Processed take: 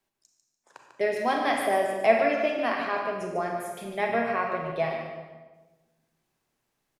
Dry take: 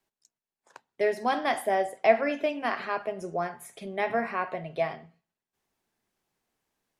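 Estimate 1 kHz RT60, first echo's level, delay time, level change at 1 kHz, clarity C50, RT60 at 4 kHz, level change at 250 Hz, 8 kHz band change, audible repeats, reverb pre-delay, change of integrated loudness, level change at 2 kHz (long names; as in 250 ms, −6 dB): 1.1 s, −8.0 dB, 146 ms, +2.0 dB, 2.5 dB, 0.95 s, +2.5 dB, +2.0 dB, 2, 30 ms, +2.0 dB, +2.5 dB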